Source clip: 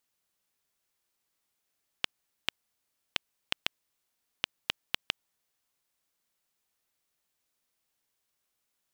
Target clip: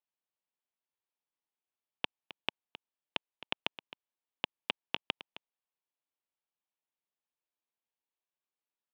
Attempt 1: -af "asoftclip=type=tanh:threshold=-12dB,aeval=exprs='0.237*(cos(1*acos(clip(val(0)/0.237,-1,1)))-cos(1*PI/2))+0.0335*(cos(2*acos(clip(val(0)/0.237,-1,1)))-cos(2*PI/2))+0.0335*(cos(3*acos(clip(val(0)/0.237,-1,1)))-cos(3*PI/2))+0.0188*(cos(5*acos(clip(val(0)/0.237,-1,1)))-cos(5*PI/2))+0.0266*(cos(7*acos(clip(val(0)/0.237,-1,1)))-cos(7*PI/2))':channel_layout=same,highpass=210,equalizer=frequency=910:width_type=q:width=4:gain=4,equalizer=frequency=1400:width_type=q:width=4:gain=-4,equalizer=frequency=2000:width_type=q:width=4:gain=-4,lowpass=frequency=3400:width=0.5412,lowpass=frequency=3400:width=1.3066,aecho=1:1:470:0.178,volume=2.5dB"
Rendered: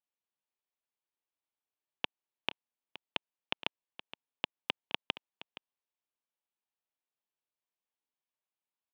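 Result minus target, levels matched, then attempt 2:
echo 206 ms late
-af "asoftclip=type=tanh:threshold=-12dB,aeval=exprs='0.237*(cos(1*acos(clip(val(0)/0.237,-1,1)))-cos(1*PI/2))+0.0335*(cos(2*acos(clip(val(0)/0.237,-1,1)))-cos(2*PI/2))+0.0335*(cos(3*acos(clip(val(0)/0.237,-1,1)))-cos(3*PI/2))+0.0188*(cos(5*acos(clip(val(0)/0.237,-1,1)))-cos(5*PI/2))+0.0266*(cos(7*acos(clip(val(0)/0.237,-1,1)))-cos(7*PI/2))':channel_layout=same,highpass=210,equalizer=frequency=910:width_type=q:width=4:gain=4,equalizer=frequency=1400:width_type=q:width=4:gain=-4,equalizer=frequency=2000:width_type=q:width=4:gain=-4,lowpass=frequency=3400:width=0.5412,lowpass=frequency=3400:width=1.3066,aecho=1:1:264:0.178,volume=2.5dB"

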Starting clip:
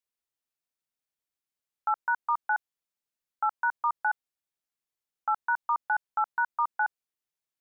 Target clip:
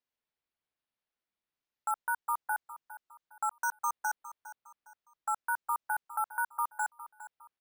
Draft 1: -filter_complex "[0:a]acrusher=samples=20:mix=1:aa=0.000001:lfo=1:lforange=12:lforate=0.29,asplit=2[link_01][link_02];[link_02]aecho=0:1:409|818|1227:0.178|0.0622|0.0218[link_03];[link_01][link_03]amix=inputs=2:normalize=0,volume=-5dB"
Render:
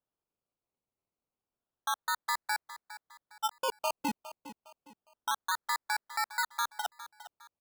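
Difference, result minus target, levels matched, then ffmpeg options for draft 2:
sample-and-hold swept by an LFO: distortion +23 dB
-filter_complex "[0:a]acrusher=samples=5:mix=1:aa=0.000001:lfo=1:lforange=3:lforate=0.29,asplit=2[link_01][link_02];[link_02]aecho=0:1:409|818|1227:0.178|0.0622|0.0218[link_03];[link_01][link_03]amix=inputs=2:normalize=0,volume=-5dB"

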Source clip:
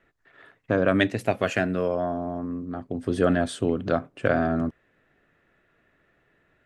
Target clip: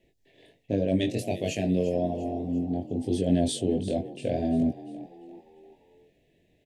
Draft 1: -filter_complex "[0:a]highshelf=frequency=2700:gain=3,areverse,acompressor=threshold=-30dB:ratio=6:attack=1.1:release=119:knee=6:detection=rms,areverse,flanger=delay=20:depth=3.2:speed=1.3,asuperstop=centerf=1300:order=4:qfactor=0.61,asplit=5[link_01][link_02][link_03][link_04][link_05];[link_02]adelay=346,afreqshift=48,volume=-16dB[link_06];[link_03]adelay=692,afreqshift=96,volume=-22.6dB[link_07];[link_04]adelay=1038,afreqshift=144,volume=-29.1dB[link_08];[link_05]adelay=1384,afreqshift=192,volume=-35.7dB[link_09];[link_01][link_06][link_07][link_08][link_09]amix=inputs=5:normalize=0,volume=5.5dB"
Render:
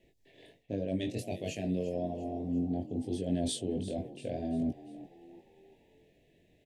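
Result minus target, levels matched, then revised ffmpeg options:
downward compressor: peak gain reduction +8.5 dB
-filter_complex "[0:a]highshelf=frequency=2700:gain=3,areverse,acompressor=threshold=-19.5dB:ratio=6:attack=1.1:release=119:knee=6:detection=rms,areverse,flanger=delay=20:depth=3.2:speed=1.3,asuperstop=centerf=1300:order=4:qfactor=0.61,asplit=5[link_01][link_02][link_03][link_04][link_05];[link_02]adelay=346,afreqshift=48,volume=-16dB[link_06];[link_03]adelay=692,afreqshift=96,volume=-22.6dB[link_07];[link_04]adelay=1038,afreqshift=144,volume=-29.1dB[link_08];[link_05]adelay=1384,afreqshift=192,volume=-35.7dB[link_09];[link_01][link_06][link_07][link_08][link_09]amix=inputs=5:normalize=0,volume=5.5dB"

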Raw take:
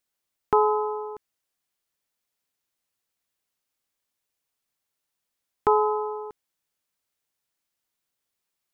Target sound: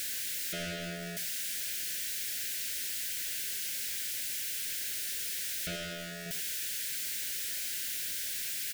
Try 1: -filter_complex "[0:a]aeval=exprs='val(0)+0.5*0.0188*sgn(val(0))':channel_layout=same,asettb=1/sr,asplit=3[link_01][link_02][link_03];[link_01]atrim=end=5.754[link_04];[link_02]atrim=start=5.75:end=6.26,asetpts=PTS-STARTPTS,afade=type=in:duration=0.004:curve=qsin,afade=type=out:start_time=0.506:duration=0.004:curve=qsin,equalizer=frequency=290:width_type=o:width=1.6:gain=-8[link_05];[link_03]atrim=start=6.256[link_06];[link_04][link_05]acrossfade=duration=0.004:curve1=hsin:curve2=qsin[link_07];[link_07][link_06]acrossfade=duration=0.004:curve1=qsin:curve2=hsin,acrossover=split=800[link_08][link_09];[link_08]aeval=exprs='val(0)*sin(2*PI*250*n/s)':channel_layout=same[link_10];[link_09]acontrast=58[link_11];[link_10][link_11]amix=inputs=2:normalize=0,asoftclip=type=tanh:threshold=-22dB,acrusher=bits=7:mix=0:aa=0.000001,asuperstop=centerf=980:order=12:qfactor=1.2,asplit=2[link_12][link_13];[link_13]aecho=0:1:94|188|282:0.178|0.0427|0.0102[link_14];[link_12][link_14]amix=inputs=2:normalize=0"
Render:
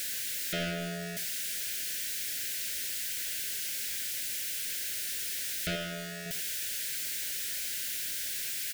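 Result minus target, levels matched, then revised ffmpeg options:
soft clipping: distortion −4 dB
-filter_complex "[0:a]aeval=exprs='val(0)+0.5*0.0188*sgn(val(0))':channel_layout=same,asettb=1/sr,asplit=3[link_01][link_02][link_03];[link_01]atrim=end=5.754[link_04];[link_02]atrim=start=5.75:end=6.26,asetpts=PTS-STARTPTS,afade=type=in:duration=0.004:curve=qsin,afade=type=out:start_time=0.506:duration=0.004:curve=qsin,equalizer=frequency=290:width_type=o:width=1.6:gain=-8[link_05];[link_03]atrim=start=6.256[link_06];[link_04][link_05]acrossfade=duration=0.004:curve1=hsin:curve2=qsin[link_07];[link_07][link_06]acrossfade=duration=0.004:curve1=qsin:curve2=hsin,acrossover=split=800[link_08][link_09];[link_08]aeval=exprs='val(0)*sin(2*PI*250*n/s)':channel_layout=same[link_10];[link_09]acontrast=58[link_11];[link_10][link_11]amix=inputs=2:normalize=0,asoftclip=type=tanh:threshold=-29dB,acrusher=bits=7:mix=0:aa=0.000001,asuperstop=centerf=980:order=12:qfactor=1.2,asplit=2[link_12][link_13];[link_13]aecho=0:1:94|188|282:0.178|0.0427|0.0102[link_14];[link_12][link_14]amix=inputs=2:normalize=0"

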